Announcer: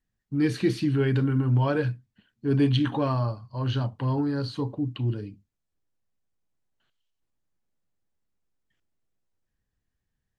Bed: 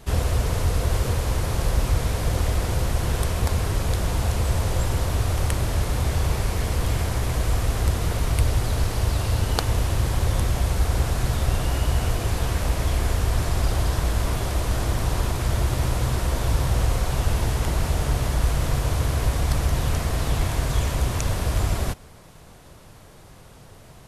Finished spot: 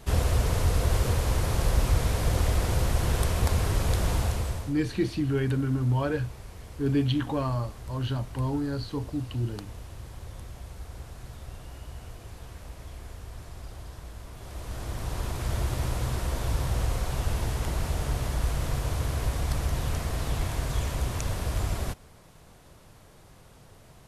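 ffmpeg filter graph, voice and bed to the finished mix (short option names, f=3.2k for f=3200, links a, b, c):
-filter_complex "[0:a]adelay=4350,volume=-3dB[a];[1:a]volume=11.5dB,afade=t=out:st=4.13:d=0.61:silence=0.133352,afade=t=in:st=14.33:d=1.22:silence=0.211349[b];[a][b]amix=inputs=2:normalize=0"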